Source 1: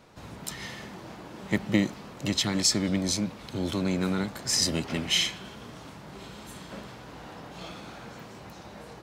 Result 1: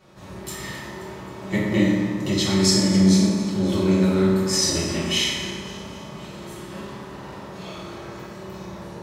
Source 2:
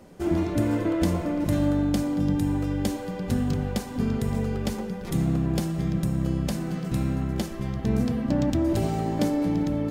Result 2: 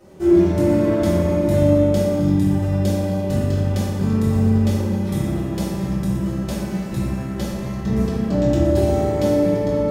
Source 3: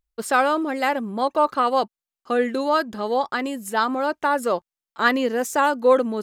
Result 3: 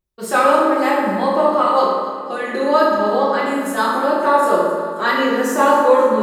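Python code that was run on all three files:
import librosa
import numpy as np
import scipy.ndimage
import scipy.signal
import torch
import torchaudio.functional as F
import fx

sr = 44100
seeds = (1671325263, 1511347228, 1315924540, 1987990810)

y = fx.echo_feedback(x, sr, ms=265, feedback_pct=56, wet_db=-15.5)
y = fx.rev_fdn(y, sr, rt60_s=1.8, lf_ratio=1.25, hf_ratio=0.5, size_ms=16.0, drr_db=-9.5)
y = F.gain(torch.from_numpy(y), -4.5).numpy()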